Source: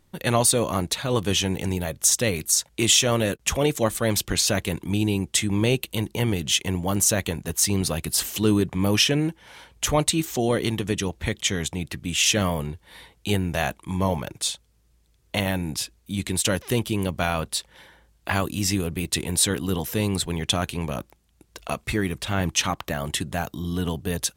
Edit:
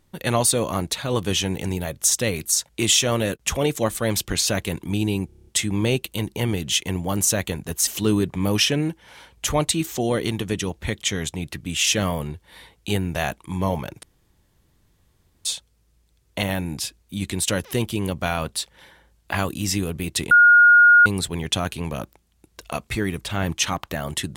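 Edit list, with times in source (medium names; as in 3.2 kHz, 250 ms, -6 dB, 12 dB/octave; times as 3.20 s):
5.26 s: stutter 0.03 s, 8 plays
7.66–8.26 s: delete
14.42 s: insert room tone 1.42 s
19.28–20.03 s: bleep 1.43 kHz -8.5 dBFS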